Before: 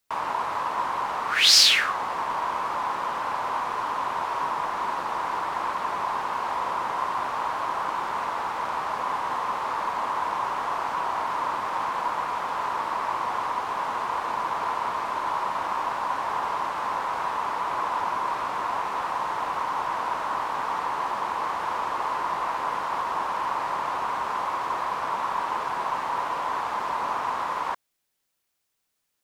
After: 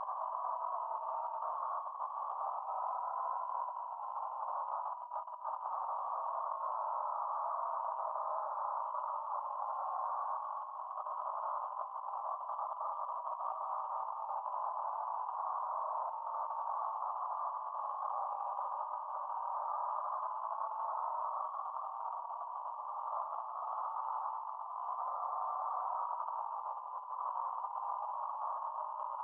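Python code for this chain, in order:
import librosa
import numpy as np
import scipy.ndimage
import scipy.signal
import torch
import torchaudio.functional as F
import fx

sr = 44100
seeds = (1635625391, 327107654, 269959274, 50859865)

y = scipy.signal.sosfilt(scipy.signal.ellip(3, 1.0, 40, [600.0, 1200.0], 'bandpass', fs=sr, output='sos'), x)
y = fx.paulstretch(y, sr, seeds[0], factor=29.0, window_s=0.05, from_s=19.94)
y = fx.over_compress(y, sr, threshold_db=-31.0, ratio=-0.5)
y = F.gain(torch.from_numpy(y), -8.0).numpy()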